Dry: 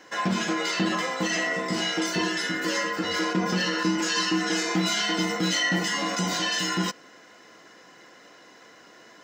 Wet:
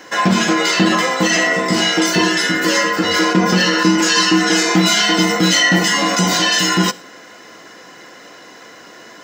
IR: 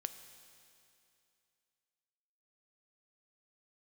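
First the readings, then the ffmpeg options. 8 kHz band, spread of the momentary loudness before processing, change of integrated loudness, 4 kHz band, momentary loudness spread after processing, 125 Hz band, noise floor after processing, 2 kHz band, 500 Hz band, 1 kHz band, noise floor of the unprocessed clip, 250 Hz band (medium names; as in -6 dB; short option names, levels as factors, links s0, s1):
+12.5 dB, 3 LU, +11.5 dB, +11.5 dB, 3 LU, +11.5 dB, -40 dBFS, +11.5 dB, +11.5 dB, +11.5 dB, -52 dBFS, +11.5 dB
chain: -filter_complex "[0:a]asplit=2[s0][s1];[s1]highshelf=f=9700:g=10[s2];[1:a]atrim=start_sample=2205,afade=t=out:st=0.17:d=0.01,atrim=end_sample=7938[s3];[s2][s3]afir=irnorm=-1:irlink=0,volume=0.841[s4];[s0][s4]amix=inputs=2:normalize=0,volume=2.24"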